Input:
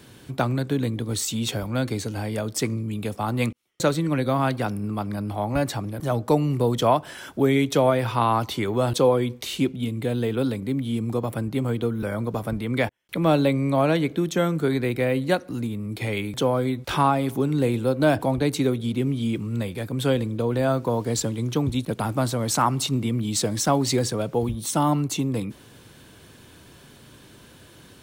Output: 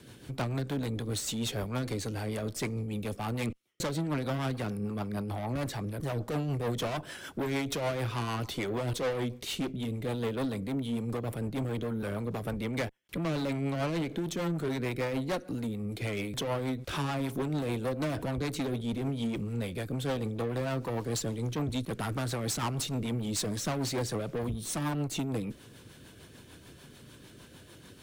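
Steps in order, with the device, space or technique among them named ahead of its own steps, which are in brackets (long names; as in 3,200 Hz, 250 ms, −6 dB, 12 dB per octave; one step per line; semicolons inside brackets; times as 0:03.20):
0:21.91–0:22.46: parametric band 1,700 Hz +6.5 dB 0.77 octaves
overdriven rotary cabinet (tube saturation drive 27 dB, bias 0.4; rotating-speaker cabinet horn 6.7 Hz)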